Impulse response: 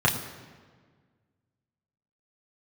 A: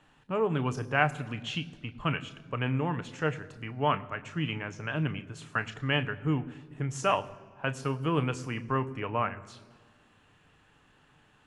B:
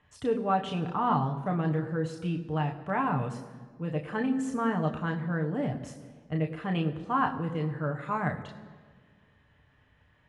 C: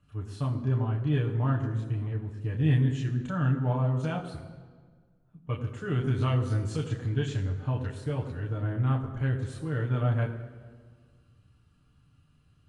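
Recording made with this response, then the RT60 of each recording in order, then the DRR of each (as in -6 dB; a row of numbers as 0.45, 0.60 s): C; 1.6, 1.6, 1.6 s; 9.5, 2.0, -3.0 dB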